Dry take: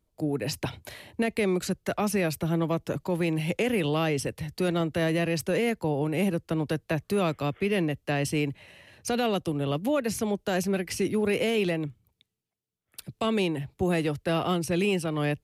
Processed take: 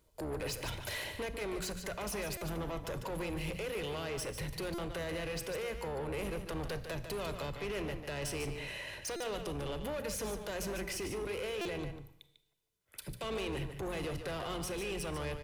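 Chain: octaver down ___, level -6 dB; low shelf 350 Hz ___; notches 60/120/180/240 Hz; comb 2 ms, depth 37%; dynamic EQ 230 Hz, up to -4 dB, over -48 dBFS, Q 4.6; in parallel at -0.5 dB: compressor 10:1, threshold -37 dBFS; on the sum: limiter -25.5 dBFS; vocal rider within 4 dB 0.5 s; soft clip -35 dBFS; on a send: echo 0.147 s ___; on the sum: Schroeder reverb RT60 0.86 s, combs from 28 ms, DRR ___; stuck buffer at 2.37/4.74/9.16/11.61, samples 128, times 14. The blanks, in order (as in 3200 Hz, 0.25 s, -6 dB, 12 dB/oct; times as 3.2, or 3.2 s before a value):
2 oct, -5.5 dB, -8.5 dB, 13.5 dB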